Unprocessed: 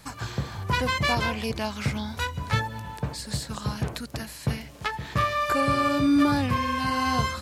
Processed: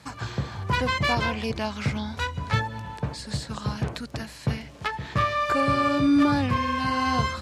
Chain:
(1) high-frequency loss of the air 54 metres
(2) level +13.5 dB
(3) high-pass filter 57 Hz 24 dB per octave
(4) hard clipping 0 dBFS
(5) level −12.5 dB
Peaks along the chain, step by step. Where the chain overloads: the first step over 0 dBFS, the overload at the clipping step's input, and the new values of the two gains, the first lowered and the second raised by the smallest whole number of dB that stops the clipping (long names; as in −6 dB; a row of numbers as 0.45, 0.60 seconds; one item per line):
−9.5, +4.0, +4.0, 0.0, −12.5 dBFS
step 2, 4.0 dB
step 2 +9.5 dB, step 5 −8.5 dB